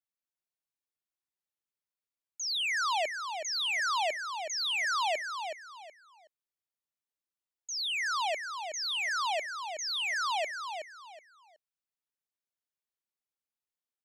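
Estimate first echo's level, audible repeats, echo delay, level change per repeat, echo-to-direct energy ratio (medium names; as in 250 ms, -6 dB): -7.0 dB, 3, 372 ms, -11.5 dB, -6.5 dB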